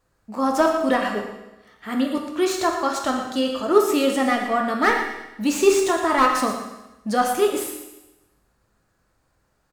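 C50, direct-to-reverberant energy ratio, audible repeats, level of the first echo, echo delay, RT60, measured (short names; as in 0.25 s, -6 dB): 4.0 dB, 1.0 dB, 1, -10.5 dB, 0.116 s, 1.0 s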